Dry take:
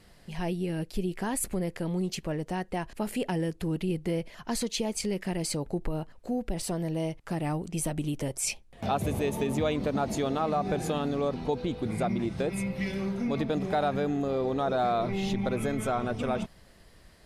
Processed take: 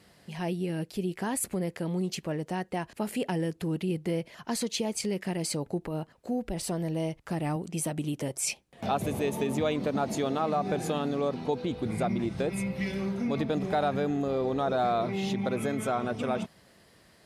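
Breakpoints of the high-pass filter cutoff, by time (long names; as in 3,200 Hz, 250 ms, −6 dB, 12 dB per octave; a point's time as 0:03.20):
100 Hz
from 0:06.43 45 Hz
from 0:07.56 120 Hz
from 0:11.71 54 Hz
from 0:15.04 120 Hz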